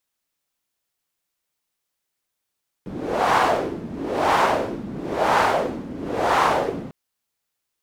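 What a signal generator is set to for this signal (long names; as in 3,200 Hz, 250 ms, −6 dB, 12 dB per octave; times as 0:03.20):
wind from filtered noise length 4.05 s, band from 230 Hz, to 960 Hz, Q 2, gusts 4, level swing 15.5 dB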